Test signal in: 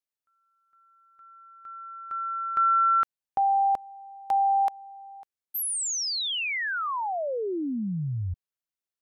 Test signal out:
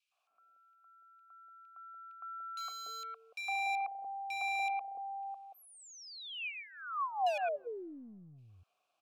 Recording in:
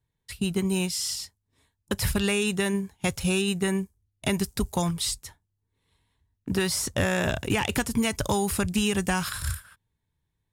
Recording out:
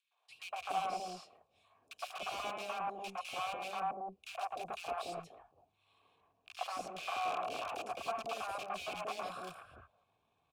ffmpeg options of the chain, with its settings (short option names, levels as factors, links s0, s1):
-filter_complex "[0:a]adynamicequalizer=threshold=0.00708:dfrequency=530:dqfactor=2.3:tfrequency=530:tqfactor=2.3:attack=5:release=100:ratio=0.375:range=3:mode=boostabove:tftype=bell,asplit=2[s0][s1];[s1]acompressor=mode=upward:threshold=0.0447:ratio=2.5:attack=0.56:release=27:knee=2.83:detection=peak,volume=0.75[s2];[s0][s2]amix=inputs=2:normalize=0,aeval=exprs='(mod(6.68*val(0)+1,2)-1)/6.68':c=same,asplit=3[s3][s4][s5];[s3]bandpass=f=730:t=q:w=8,volume=1[s6];[s4]bandpass=f=1090:t=q:w=8,volume=0.501[s7];[s5]bandpass=f=2440:t=q:w=8,volume=0.355[s8];[s6][s7][s8]amix=inputs=3:normalize=0,acrossover=split=260[s9][s10];[s9]aeval=exprs='clip(val(0),-1,0.00158)':c=same[s11];[s11][s10]amix=inputs=2:normalize=0,acrossover=split=640|2100[s12][s13][s14];[s13]adelay=110[s15];[s12]adelay=290[s16];[s16][s15][s14]amix=inputs=3:normalize=0,volume=0.841"